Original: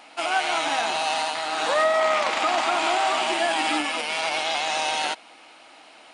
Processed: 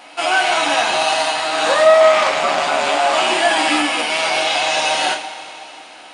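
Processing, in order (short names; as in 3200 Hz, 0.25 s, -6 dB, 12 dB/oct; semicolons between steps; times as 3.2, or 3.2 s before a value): 2.29–3.13 ring modulator 74 Hz; two-slope reverb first 0.31 s, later 3.3 s, from -18 dB, DRR 0 dB; gain +5 dB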